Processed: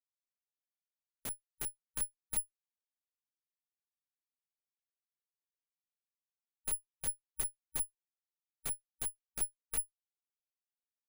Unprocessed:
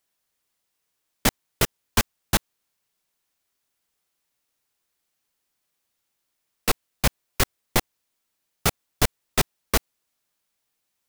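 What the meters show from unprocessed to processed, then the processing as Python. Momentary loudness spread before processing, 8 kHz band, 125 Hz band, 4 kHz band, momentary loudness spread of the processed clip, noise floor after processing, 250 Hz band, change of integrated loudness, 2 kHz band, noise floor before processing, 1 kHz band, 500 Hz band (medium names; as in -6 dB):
2 LU, -8.5 dB, -26.5 dB, -25.0 dB, 6 LU, under -85 dBFS, -26.5 dB, -12.5 dB, -25.0 dB, -78 dBFS, -26.0 dB, -26.0 dB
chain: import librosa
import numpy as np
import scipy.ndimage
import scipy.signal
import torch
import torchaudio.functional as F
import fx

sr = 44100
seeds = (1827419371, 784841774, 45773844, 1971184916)

y = fx.schmitt(x, sr, flips_db=-26.5)
y = (np.kron(scipy.signal.resample_poly(y, 1, 4), np.eye(4)[0]) * 4)[:len(y)]
y = fx.hpss(y, sr, part='percussive', gain_db=-15)
y = y * librosa.db_to_amplitude(2.5)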